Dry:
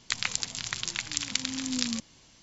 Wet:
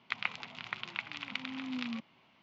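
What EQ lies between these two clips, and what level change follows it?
loudspeaker in its box 190–2,600 Hz, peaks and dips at 310 Hz −7 dB, 490 Hz −8 dB, 1,700 Hz −8 dB
low-shelf EQ 320 Hz −4.5 dB
+1.0 dB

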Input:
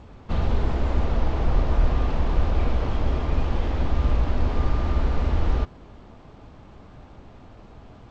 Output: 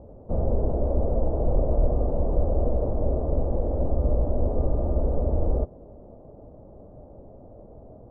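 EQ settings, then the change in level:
transistor ladder low-pass 650 Hz, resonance 60%
+8.5 dB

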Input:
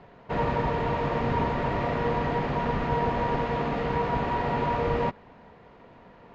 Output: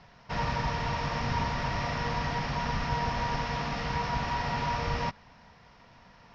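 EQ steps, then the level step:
low-pass with resonance 5,500 Hz, resonance Q 9.4
parametric band 390 Hz −13.5 dB 1.5 octaves
0.0 dB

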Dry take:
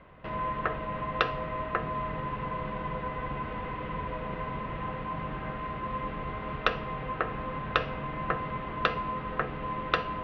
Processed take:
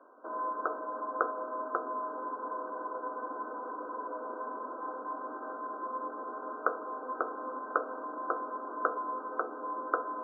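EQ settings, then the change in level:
linear-phase brick-wall band-pass 240–1,600 Hz
−2.0 dB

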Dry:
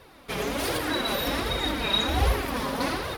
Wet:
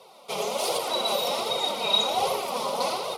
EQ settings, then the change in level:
high-pass filter 210 Hz 24 dB per octave
low-pass filter 11,000 Hz 12 dB per octave
phaser with its sweep stopped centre 700 Hz, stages 4
+5.0 dB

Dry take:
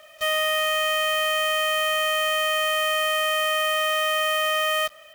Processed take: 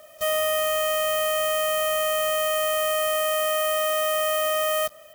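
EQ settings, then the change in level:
low-shelf EQ 65 Hz −6.5 dB
parametric band 2,400 Hz −14 dB 2.6 octaves
+7.0 dB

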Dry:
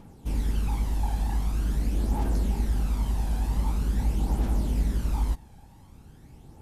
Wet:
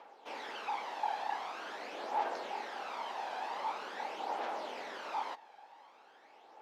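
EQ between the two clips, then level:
high-pass filter 570 Hz 24 dB per octave
high-frequency loss of the air 230 metres
+6.0 dB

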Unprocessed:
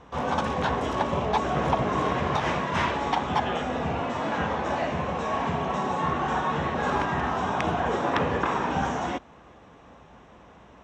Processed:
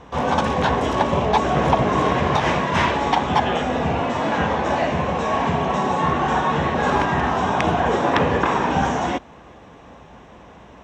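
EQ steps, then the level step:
parametric band 1,300 Hz −3.5 dB 0.31 octaves
+7.0 dB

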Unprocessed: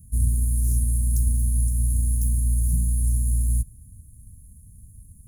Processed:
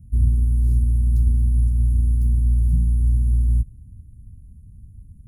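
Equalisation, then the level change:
high-frequency loss of the air 400 metres
high-shelf EQ 2,100 Hz +6.5 dB
+4.0 dB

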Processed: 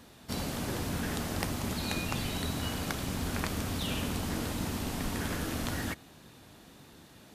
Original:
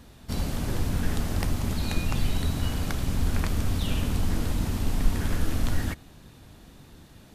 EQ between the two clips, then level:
high-pass filter 230 Hz 6 dB per octave
0.0 dB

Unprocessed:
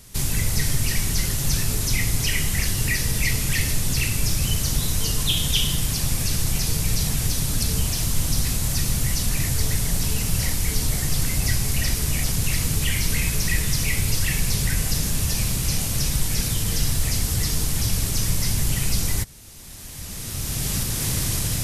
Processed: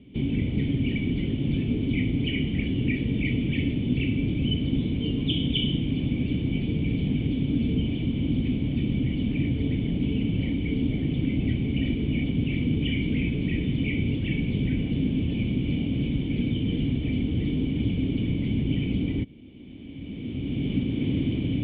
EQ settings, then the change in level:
formant resonators in series i
high-pass filter 53 Hz
parametric band 470 Hz +9.5 dB 2.2 octaves
+8.5 dB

